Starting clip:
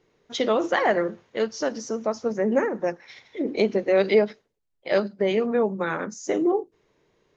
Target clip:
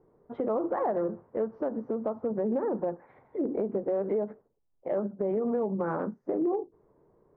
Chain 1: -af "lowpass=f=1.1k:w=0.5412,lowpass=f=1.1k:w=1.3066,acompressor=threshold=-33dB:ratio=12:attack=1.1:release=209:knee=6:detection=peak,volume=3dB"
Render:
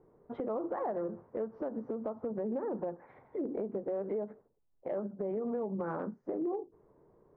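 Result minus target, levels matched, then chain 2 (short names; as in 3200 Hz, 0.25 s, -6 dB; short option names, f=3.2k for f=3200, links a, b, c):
compressor: peak gain reduction +6.5 dB
-af "lowpass=f=1.1k:w=0.5412,lowpass=f=1.1k:w=1.3066,acompressor=threshold=-26dB:ratio=12:attack=1.1:release=209:knee=6:detection=peak,volume=3dB"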